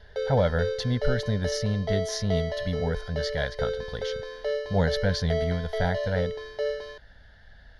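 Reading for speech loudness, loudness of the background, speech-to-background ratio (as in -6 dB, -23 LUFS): -29.0 LUFS, -32.0 LUFS, 3.0 dB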